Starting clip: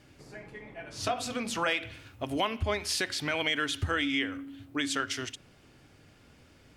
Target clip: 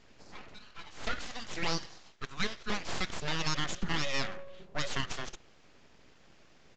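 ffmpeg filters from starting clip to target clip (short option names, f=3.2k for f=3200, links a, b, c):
-filter_complex "[0:a]asettb=1/sr,asplit=3[a][b][c];[a]atrim=end=0.544[d];[b]atrim=start=0.54:end=2.7,asetpts=PTS-STARTPTS,afade=t=in:d=0.004:c=qsin,afade=t=out:st=2.156:d=0.004:c=qsin,highpass=f=540:w=0.5412,highpass=f=540:w=1.3066[e];[c]atrim=start=2.696[f];[d][e]acrossfade=d=0.004:c1=hsin:c2=qsin[g];[g][f]acrossfade=d=0.004:c1=qsin:c2=hsin,aeval=exprs='abs(val(0))':c=same,aresample=16000,aresample=44100"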